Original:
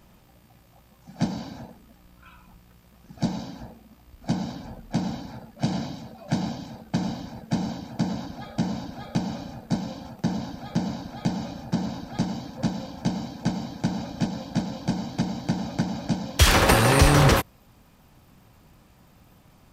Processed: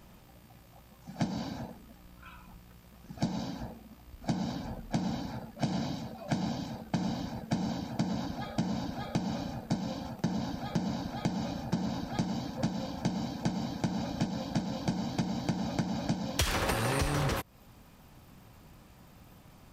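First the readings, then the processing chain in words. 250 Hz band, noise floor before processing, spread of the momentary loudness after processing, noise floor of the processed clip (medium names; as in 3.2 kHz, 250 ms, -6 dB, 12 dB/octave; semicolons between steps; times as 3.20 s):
-5.5 dB, -56 dBFS, 12 LU, -56 dBFS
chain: compression 8:1, threshold -27 dBFS, peak gain reduction 16 dB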